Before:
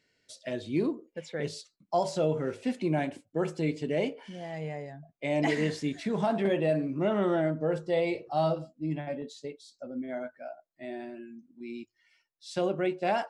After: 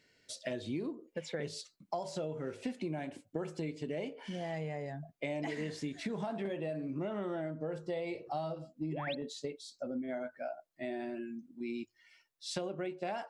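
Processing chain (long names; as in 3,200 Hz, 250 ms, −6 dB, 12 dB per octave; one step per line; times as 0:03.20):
downward compressor 10 to 1, threshold −38 dBFS, peak gain reduction 16 dB
sound drawn into the spectrogram rise, 0:08.91–0:09.15, 310–4,500 Hz −45 dBFS
level +3.5 dB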